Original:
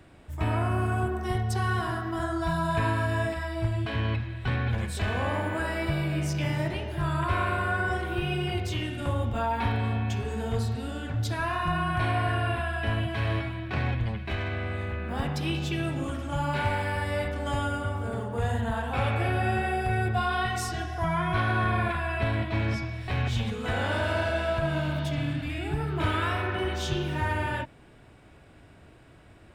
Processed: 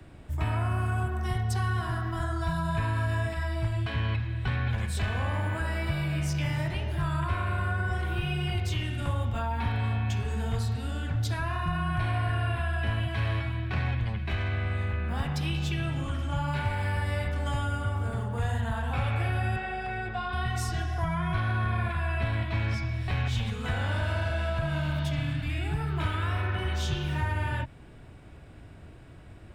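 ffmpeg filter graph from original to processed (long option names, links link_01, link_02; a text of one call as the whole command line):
ffmpeg -i in.wav -filter_complex "[0:a]asettb=1/sr,asplit=3[link_01][link_02][link_03];[link_01]atrim=end=15.744[link_04];[link_02]atrim=start=15.74:end=16.48,asetpts=PTS-STARTPTS,afade=type=in:duration=0.004:curve=qsin,afade=type=out:start_time=0.736:duration=0.004:curve=qsin,acrossover=split=6200[link_05][link_06];[link_06]acompressor=threshold=-59dB:ratio=4:attack=1:release=60[link_07];[link_05][link_07]amix=inputs=2:normalize=0,aeval=exprs='val(0)+0.00224*sin(2*PI*3100*n/s)':channel_layout=same[link_08];[link_03]atrim=start=16.476[link_09];[link_04][link_08]acrossfade=duration=0.004:curve1=hsin:curve2=qsin[link_10];[link_10][link_09]acrossfade=duration=0.004:curve1=qsin:curve2=hsin,asettb=1/sr,asplit=3[link_11][link_12][link_13];[link_11]atrim=end=19.564[link_14];[link_12]atrim=start=19.56:end=20.33,asetpts=PTS-STARTPTS,afade=type=in:duration=0.004:curve=qsin,afade=type=out:start_time=0.766:duration=0.004:curve=qsin,highpass=300,lowpass=5200,aeval=exprs='val(0)+0.00398*(sin(2*PI*50*n/s)+sin(2*PI*2*50*n/s)/2+sin(2*PI*3*50*n/s)/3+sin(2*PI*4*50*n/s)/4+sin(2*PI*5*50*n/s)/5)':channel_layout=same[link_15];[link_13]atrim=start=20.326[link_16];[link_14][link_15]acrossfade=duration=0.004:curve1=hsin:curve2=qsin[link_17];[link_17][link_16]acrossfade=duration=0.004:curve1=qsin:curve2=hsin,lowshelf=frequency=180:gain=8.5,acrossover=split=83|190|710[link_18][link_19][link_20][link_21];[link_18]acompressor=threshold=-35dB:ratio=4[link_22];[link_19]acompressor=threshold=-31dB:ratio=4[link_23];[link_20]acompressor=threshold=-44dB:ratio=4[link_24];[link_21]acompressor=threshold=-33dB:ratio=4[link_25];[link_22][link_23][link_24][link_25]amix=inputs=4:normalize=0" out.wav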